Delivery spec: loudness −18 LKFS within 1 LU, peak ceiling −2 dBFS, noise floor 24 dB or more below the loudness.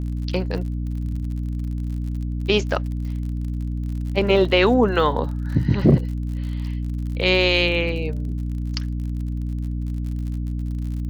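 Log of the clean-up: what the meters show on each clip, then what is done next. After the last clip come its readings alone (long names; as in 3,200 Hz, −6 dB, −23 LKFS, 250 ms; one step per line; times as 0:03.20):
crackle rate 51 per second; mains hum 60 Hz; hum harmonics up to 300 Hz; level of the hum −23 dBFS; integrated loudness −23.0 LKFS; sample peak −3.5 dBFS; target loudness −18.0 LKFS
→ click removal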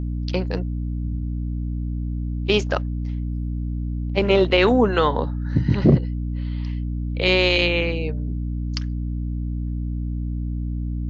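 crackle rate 0 per second; mains hum 60 Hz; hum harmonics up to 300 Hz; level of the hum −23 dBFS
→ mains-hum notches 60/120/180/240/300 Hz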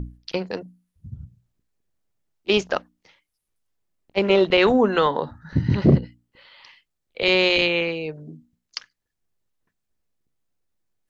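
mains hum none found; integrated loudness −20.5 LKFS; sample peak −3.5 dBFS; target loudness −18.0 LKFS
→ level +2.5 dB
brickwall limiter −2 dBFS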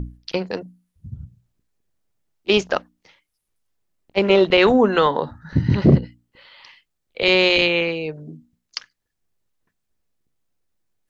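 integrated loudness −18.0 LKFS; sample peak −2.0 dBFS; background noise floor −77 dBFS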